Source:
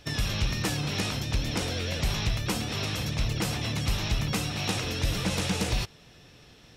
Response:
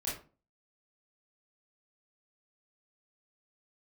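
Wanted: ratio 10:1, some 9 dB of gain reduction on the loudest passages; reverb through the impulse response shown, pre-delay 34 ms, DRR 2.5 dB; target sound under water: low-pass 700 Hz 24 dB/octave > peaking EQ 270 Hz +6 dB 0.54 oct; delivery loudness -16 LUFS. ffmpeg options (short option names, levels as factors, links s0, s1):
-filter_complex "[0:a]acompressor=threshold=0.0282:ratio=10,asplit=2[s0][s1];[1:a]atrim=start_sample=2205,adelay=34[s2];[s1][s2]afir=irnorm=-1:irlink=0,volume=0.562[s3];[s0][s3]amix=inputs=2:normalize=0,lowpass=f=700:w=0.5412,lowpass=f=700:w=1.3066,equalizer=f=270:t=o:w=0.54:g=6,volume=8.41"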